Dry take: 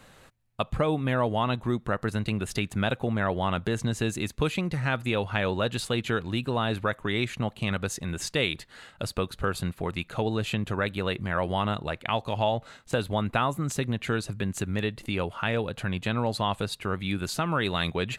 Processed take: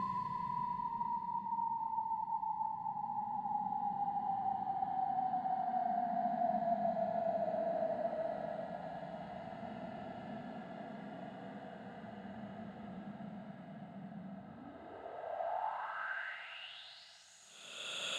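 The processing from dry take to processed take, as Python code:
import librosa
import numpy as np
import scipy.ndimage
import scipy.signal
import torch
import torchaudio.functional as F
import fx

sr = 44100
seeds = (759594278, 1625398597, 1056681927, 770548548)

y = fx.recorder_agc(x, sr, target_db=-16.0, rise_db_per_s=7.7, max_gain_db=30)
y = fx.spec_paint(y, sr, seeds[0], shape='fall', start_s=7.9, length_s=0.9, low_hz=630.0, high_hz=6800.0, level_db=-30.0)
y = fx.paulstretch(y, sr, seeds[1], factor=47.0, window_s=0.05, from_s=8.62)
y = fx.echo_diffused(y, sr, ms=1043, feedback_pct=77, wet_db=-13.5)
y = fx.filter_sweep_bandpass(y, sr, from_hz=200.0, to_hz=6600.0, start_s=14.46, end_s=17.32, q=4.6)
y = y * 10.0 ** (17.0 / 20.0)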